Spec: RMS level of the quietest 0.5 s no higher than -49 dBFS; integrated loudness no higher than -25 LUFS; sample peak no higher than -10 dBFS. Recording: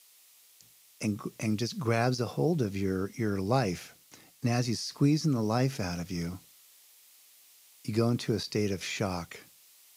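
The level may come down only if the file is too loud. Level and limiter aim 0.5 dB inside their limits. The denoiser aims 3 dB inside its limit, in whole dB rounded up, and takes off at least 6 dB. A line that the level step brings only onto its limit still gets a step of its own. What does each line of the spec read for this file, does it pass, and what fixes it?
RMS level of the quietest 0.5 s -59 dBFS: pass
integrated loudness -30.5 LUFS: pass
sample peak -14.5 dBFS: pass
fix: none needed

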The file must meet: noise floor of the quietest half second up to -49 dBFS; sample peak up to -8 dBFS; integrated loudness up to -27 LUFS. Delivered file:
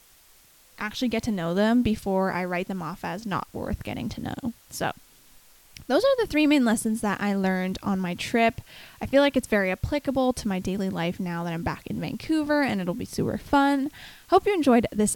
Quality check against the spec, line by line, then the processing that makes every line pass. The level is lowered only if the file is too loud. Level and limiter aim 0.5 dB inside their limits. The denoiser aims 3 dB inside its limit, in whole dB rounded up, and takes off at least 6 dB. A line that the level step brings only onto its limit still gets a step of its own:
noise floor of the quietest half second -56 dBFS: pass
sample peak -6.0 dBFS: fail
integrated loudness -25.5 LUFS: fail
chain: trim -2 dB; peak limiter -8.5 dBFS

